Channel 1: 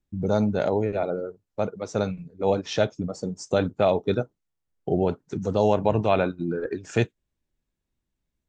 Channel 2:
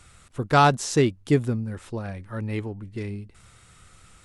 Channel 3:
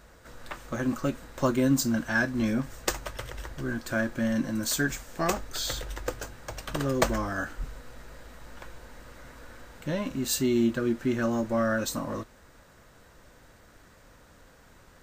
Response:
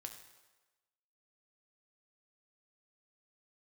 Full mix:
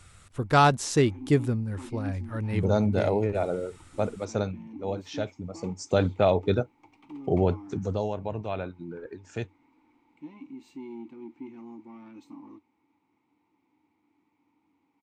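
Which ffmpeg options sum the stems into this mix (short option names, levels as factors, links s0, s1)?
-filter_complex "[0:a]adelay=2400,volume=2.24,afade=t=out:st=4.3:d=0.29:silence=0.398107,afade=t=in:st=5.45:d=0.36:silence=0.375837,afade=t=out:st=7.68:d=0.41:silence=0.298538[s0];[1:a]volume=0.794[s1];[2:a]highpass=88,asoftclip=type=tanh:threshold=0.0794,asplit=3[s2][s3][s4];[s2]bandpass=f=300:t=q:w=8,volume=1[s5];[s3]bandpass=f=870:t=q:w=8,volume=0.501[s6];[s4]bandpass=f=2240:t=q:w=8,volume=0.355[s7];[s5][s6][s7]amix=inputs=3:normalize=0,adelay=350,volume=0.75[s8];[s0][s1][s8]amix=inputs=3:normalize=0,equalizer=f=93:t=o:w=0.26:g=8"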